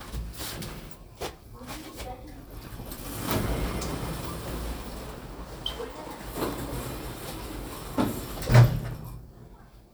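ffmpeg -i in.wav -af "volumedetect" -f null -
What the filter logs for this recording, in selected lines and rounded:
mean_volume: -30.4 dB
max_volume: -4.1 dB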